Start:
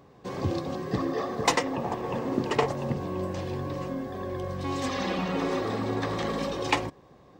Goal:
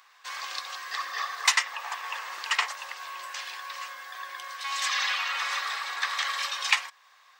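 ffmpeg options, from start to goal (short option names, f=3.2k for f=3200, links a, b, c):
-filter_complex "[0:a]highpass=f=1.3k:w=0.5412,highpass=f=1.3k:w=1.3066,asplit=2[a][b];[b]alimiter=limit=-22dB:level=0:latency=1:release=399,volume=2dB[c];[a][c]amix=inputs=2:normalize=0,volume=2.5dB"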